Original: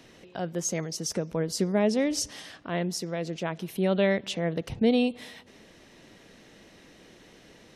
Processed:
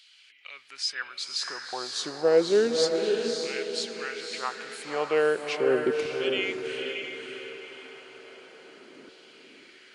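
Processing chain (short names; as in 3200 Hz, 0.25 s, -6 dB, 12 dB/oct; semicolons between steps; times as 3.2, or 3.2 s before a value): varispeed -22%; LFO high-pass saw down 0.33 Hz 280–3500 Hz; diffused feedback echo 0.564 s, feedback 44%, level -4 dB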